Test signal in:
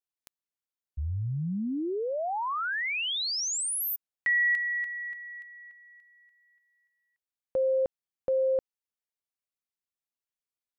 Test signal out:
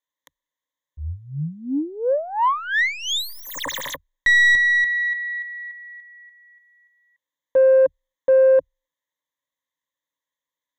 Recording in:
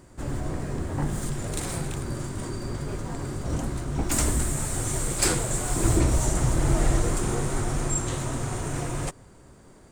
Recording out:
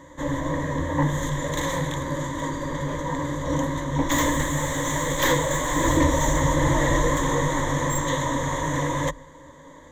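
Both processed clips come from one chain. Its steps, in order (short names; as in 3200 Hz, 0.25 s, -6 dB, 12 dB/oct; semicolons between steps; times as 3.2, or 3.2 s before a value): tracing distortion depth 0.12 ms; ripple EQ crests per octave 1.1, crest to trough 18 dB; overdrive pedal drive 14 dB, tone 1900 Hz, clips at -5.5 dBFS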